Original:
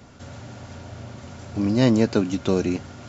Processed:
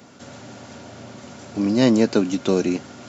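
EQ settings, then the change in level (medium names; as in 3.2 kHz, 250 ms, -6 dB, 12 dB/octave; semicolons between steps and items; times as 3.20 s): high-pass 200 Hz 12 dB/octave; tilt EQ +1.5 dB/octave; bass shelf 440 Hz +9 dB; 0.0 dB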